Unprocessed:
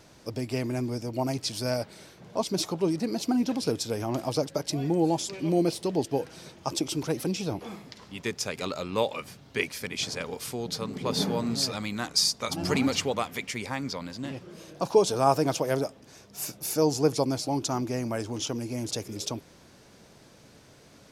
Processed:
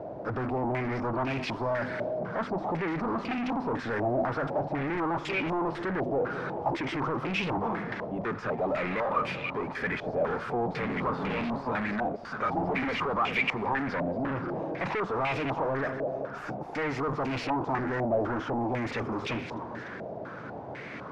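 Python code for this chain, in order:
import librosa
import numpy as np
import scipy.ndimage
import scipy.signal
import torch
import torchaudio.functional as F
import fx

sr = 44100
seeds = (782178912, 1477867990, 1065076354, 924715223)

p1 = scipy.signal.sosfilt(scipy.signal.butter(2, 92.0, 'highpass', fs=sr, output='sos'), x)
p2 = fx.hum_notches(p1, sr, base_hz=50, count=5)
p3 = fx.over_compress(p2, sr, threshold_db=-34.0, ratio=-1.0)
p4 = p2 + (p3 * 10.0 ** (-1.0 / 20.0))
p5 = np.clip(p4, -10.0 ** (-23.0 / 20.0), 10.0 ** (-23.0 / 20.0))
p6 = p5 + fx.echo_split(p5, sr, split_hz=890.0, low_ms=203, high_ms=294, feedback_pct=52, wet_db=-15.0, dry=0)
p7 = 10.0 ** (-35.0 / 20.0) * np.tanh(p6 / 10.0 ** (-35.0 / 20.0))
p8 = fx.filter_held_lowpass(p7, sr, hz=4.0, low_hz=660.0, high_hz=2500.0)
y = p8 * 10.0 ** (5.0 / 20.0)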